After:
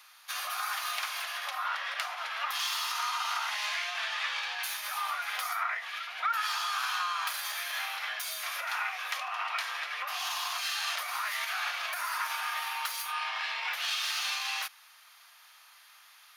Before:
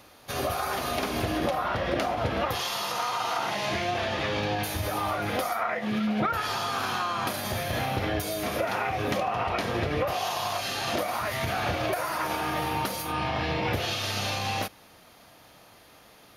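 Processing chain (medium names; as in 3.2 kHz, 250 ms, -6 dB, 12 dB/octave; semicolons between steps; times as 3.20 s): tracing distortion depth 0.029 ms; inverse Chebyshev high-pass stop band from 320 Hz, stop band 60 dB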